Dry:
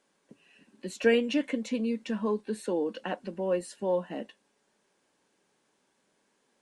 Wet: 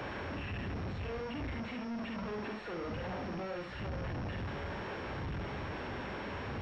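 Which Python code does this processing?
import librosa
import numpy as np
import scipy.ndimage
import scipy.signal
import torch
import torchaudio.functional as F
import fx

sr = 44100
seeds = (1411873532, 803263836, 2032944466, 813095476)

y = np.sign(x) * np.sqrt(np.mean(np.square(x)))
y = fx.dmg_wind(y, sr, seeds[0], corner_hz=85.0, level_db=-29.0)
y = scipy.signal.sosfilt(scipy.signal.butter(4, 61.0, 'highpass', fs=sr, output='sos'), y)
y = fx.room_early_taps(y, sr, ms=(48, 69), db=(-4.5, -6.0))
y = np.clip(10.0 ** (30.5 / 20.0) * y, -1.0, 1.0) / 10.0 ** (30.5 / 20.0)
y = fx.pwm(y, sr, carrier_hz=5500.0)
y = F.gain(torch.from_numpy(y), -5.5).numpy()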